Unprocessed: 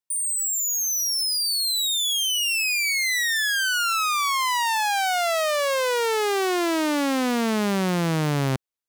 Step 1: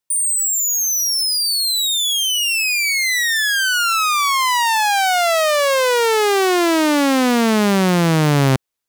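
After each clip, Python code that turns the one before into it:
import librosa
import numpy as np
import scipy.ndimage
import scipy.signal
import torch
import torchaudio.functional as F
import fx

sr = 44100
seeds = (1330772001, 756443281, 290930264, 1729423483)

y = fx.rider(x, sr, range_db=3, speed_s=0.5)
y = y * 10.0 ** (6.5 / 20.0)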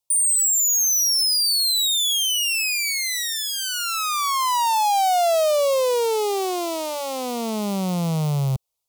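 y = fx.fold_sine(x, sr, drive_db=5, ceiling_db=-8.5)
y = fx.fixed_phaser(y, sr, hz=690.0, stages=4)
y = y * 10.0 ** (-7.0 / 20.0)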